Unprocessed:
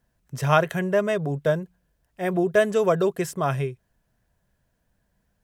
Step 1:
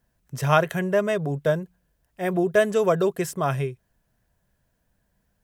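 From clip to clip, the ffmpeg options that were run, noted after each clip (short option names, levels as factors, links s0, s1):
-af "highshelf=f=11000:g=4.5"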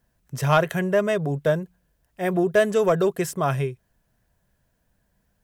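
-af "asoftclip=type=tanh:threshold=0.355,volume=1.19"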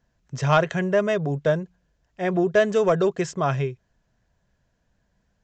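-af "aresample=16000,aresample=44100"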